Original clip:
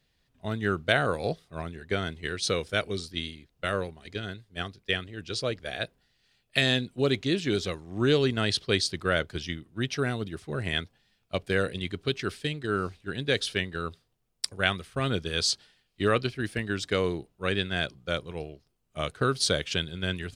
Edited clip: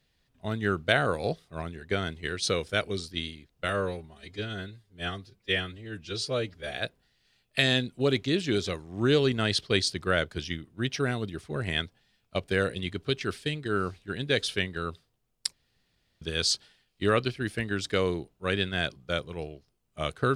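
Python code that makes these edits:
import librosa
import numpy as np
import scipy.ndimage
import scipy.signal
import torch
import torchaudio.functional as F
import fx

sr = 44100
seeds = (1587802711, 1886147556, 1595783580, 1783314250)

y = fx.edit(x, sr, fx.stretch_span(start_s=3.69, length_s=2.03, factor=1.5),
    fx.room_tone_fill(start_s=14.51, length_s=0.69), tone=tone)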